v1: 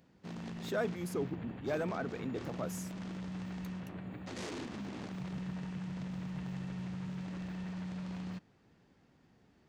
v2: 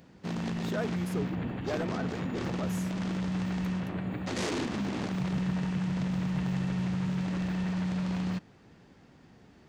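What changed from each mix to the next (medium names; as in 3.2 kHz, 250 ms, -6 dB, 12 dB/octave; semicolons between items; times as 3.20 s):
speech: remove high-pass 110 Hz 24 dB/octave; background +10.0 dB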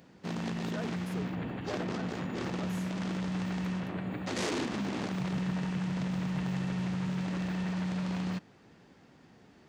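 speech -6.5 dB; master: add bass shelf 100 Hz -9.5 dB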